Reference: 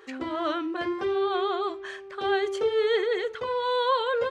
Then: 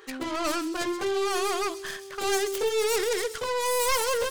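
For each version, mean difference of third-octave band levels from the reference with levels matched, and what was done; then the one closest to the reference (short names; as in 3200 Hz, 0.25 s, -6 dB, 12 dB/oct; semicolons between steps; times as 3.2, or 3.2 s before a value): 9.5 dB: tracing distortion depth 0.36 ms; high shelf 2900 Hz +8 dB; soft clip -19 dBFS, distortion -17 dB; on a send: thin delay 0.131 s, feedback 61%, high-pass 4900 Hz, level -8.5 dB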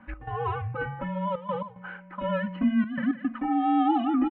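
13.5 dB: comb 4.1 ms, depth 86%; step gate "x.xxxxxxxx." 111 bpm -12 dB; mistuned SSB -210 Hz 170–2600 Hz; gain -2 dB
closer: first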